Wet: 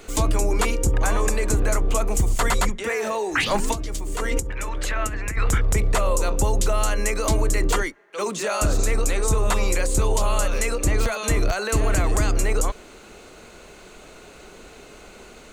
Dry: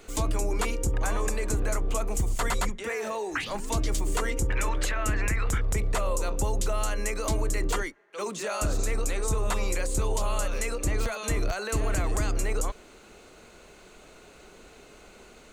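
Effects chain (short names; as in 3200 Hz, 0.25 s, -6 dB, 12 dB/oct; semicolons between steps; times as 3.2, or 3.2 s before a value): 3.35–5.38 negative-ratio compressor -29 dBFS, ratio -0.5; gain +6.5 dB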